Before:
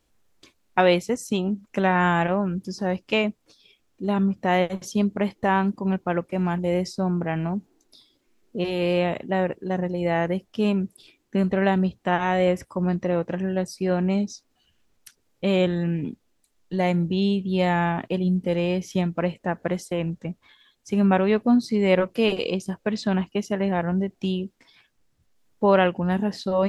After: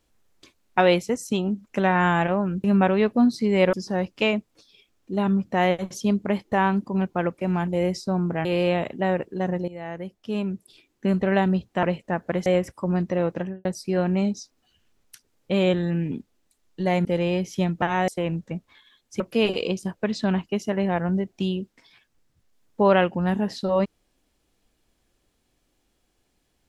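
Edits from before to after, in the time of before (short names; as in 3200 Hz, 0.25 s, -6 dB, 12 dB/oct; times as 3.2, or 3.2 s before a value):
7.36–8.75 cut
9.98–11.42 fade in, from -16 dB
12.13–12.39 swap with 19.19–19.82
13.3–13.58 studio fade out
16.98–18.42 cut
20.94–22.03 move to 2.64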